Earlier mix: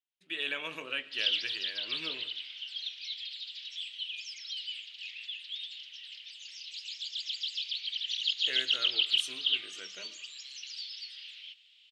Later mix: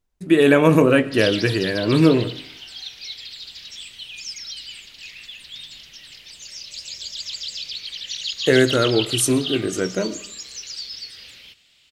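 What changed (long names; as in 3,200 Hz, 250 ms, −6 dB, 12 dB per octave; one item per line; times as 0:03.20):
speech +4.0 dB
master: remove resonant band-pass 3,100 Hz, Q 3.2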